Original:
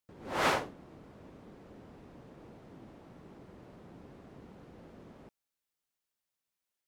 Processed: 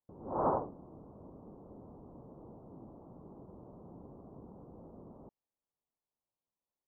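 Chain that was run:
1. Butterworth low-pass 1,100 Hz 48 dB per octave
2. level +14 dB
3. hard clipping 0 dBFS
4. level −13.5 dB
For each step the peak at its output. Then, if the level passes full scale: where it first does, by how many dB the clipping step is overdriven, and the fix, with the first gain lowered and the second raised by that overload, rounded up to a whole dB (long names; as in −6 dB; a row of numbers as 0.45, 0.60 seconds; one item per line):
−20.0, −6.0, −6.0, −19.5 dBFS
no step passes full scale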